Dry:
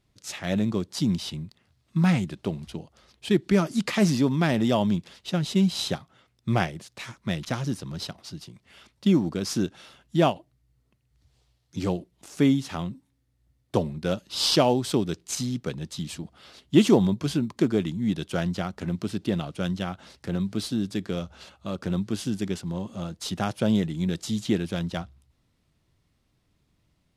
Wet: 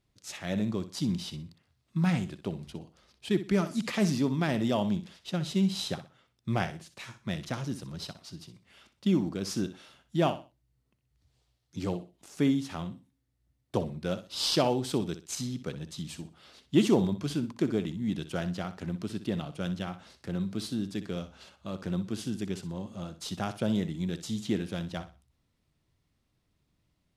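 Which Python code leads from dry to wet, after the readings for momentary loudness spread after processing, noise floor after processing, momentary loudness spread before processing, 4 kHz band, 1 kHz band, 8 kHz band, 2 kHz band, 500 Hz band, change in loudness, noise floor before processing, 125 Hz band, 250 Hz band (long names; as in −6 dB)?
14 LU, −76 dBFS, 14 LU, −5.5 dB, −5.5 dB, −5.5 dB, −5.5 dB, −5.0 dB, −5.0 dB, −70 dBFS, −5.5 dB, −5.0 dB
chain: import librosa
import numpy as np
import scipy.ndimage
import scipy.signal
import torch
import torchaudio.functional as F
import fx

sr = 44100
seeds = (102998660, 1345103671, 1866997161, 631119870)

y = fx.echo_feedback(x, sr, ms=62, feedback_pct=27, wet_db=-12.5)
y = y * librosa.db_to_amplitude(-5.5)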